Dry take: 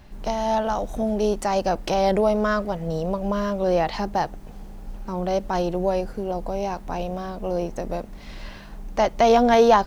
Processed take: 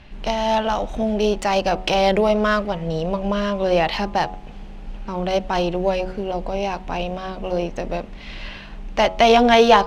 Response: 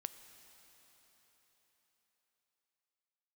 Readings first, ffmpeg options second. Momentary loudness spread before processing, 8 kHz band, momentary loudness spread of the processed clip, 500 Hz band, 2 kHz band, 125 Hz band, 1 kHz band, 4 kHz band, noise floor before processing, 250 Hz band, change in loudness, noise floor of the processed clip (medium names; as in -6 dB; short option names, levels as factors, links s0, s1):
20 LU, +2.0 dB, 19 LU, +2.5 dB, +7.0 dB, +2.0 dB, +3.0 dB, +9.5 dB, -40 dBFS, +2.5 dB, +3.0 dB, -37 dBFS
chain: -af "adynamicsmooth=sensitivity=7:basefreq=6100,equalizer=f=2800:w=1.3:g=10,bandreject=f=92.85:t=h:w=4,bandreject=f=185.7:t=h:w=4,bandreject=f=278.55:t=h:w=4,bandreject=f=371.4:t=h:w=4,bandreject=f=464.25:t=h:w=4,bandreject=f=557.1:t=h:w=4,bandreject=f=649.95:t=h:w=4,bandreject=f=742.8:t=h:w=4,bandreject=f=835.65:t=h:w=4,bandreject=f=928.5:t=h:w=4,bandreject=f=1021.35:t=h:w=4,bandreject=f=1114.2:t=h:w=4,bandreject=f=1207.05:t=h:w=4,bandreject=f=1299.9:t=h:w=4,volume=1.33"